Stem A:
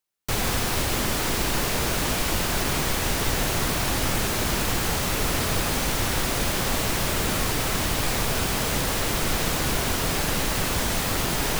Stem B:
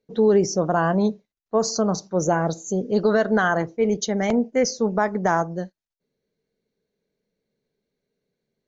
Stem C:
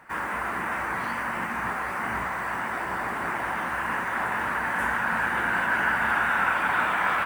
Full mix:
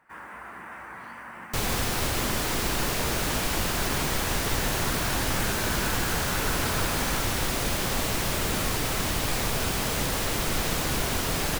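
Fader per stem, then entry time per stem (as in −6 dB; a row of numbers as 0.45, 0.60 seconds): −2.5 dB, muted, −12.0 dB; 1.25 s, muted, 0.00 s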